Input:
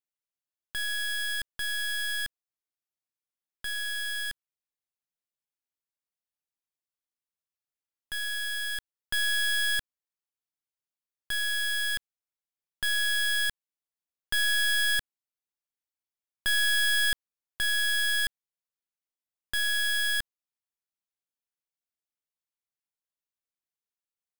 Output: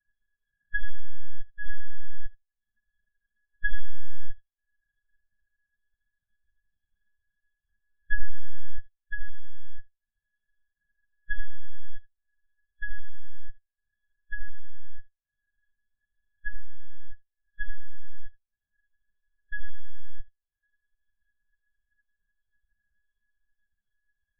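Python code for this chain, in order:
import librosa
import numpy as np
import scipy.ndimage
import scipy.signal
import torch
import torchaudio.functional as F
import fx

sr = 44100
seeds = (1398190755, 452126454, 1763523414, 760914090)

y = fx.bin_compress(x, sr, power=0.4)
y = fx.over_compress(y, sr, threshold_db=-35.0, ratio=-1.0)
y = fx.lpc_monotone(y, sr, seeds[0], pitch_hz=210.0, order=16)
y = fx.lowpass(y, sr, hz=1200.0, slope=6)
y = fx.echo_feedback(y, sr, ms=79, feedback_pct=27, wet_db=-5.0)
y = fx.transient(y, sr, attack_db=9, sustain_db=-7)
y = fx.spectral_expand(y, sr, expansion=2.5)
y = y * 10.0 ** (13.0 / 20.0)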